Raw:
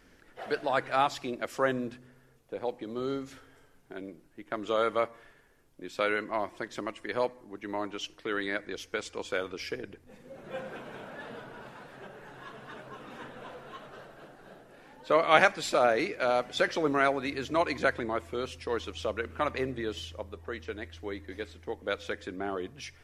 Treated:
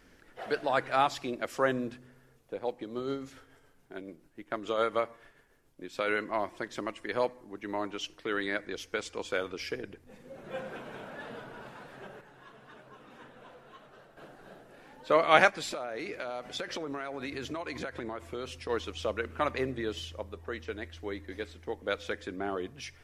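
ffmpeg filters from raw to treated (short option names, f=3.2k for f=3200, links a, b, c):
-filter_complex "[0:a]asettb=1/sr,asplit=3[a][b][c];[a]atrim=end=2.544[d];[b]atrim=start=2.54:end=6.08,asetpts=PTS-STARTPTS,afade=t=in:d=0.004:c=qsin,afade=t=out:st=3.536:d=0.004:c=qsin,tremolo=f=7:d=0.4[e];[c]atrim=start=6.076[f];[d][e]acrossfade=d=0.004:c1=hsin:c2=qsin[g];[g][f]acrossfade=d=0.004:c1=qsin:c2=hsin,asplit=3[h][i][j];[h]afade=t=out:st=15.49:d=0.02[k];[i]acompressor=threshold=-32dB:ratio=16:attack=3.2:release=140:knee=1:detection=peak,afade=t=in:st=15.49:d=0.02,afade=t=out:st=18.68:d=0.02[l];[j]afade=t=in:st=18.68:d=0.02[m];[k][l][m]amix=inputs=3:normalize=0,asplit=3[n][o][p];[n]atrim=end=12.212[q];[o]atrim=start=12.208:end=14.172,asetpts=PTS-STARTPTS,volume=-7.5dB[r];[p]atrim=start=14.168[s];[q][r]acrossfade=d=0.004:c1=hsin:c2=hsin[t];[t][s]acrossfade=d=0.004:c1=hsin:c2=hsin"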